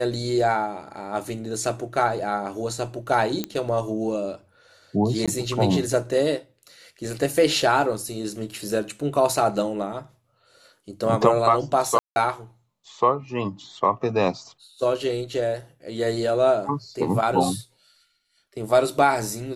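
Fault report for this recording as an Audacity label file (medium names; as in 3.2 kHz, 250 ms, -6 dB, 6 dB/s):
3.440000	3.440000	pop -11 dBFS
5.260000	5.280000	dropout 16 ms
11.990000	12.160000	dropout 171 ms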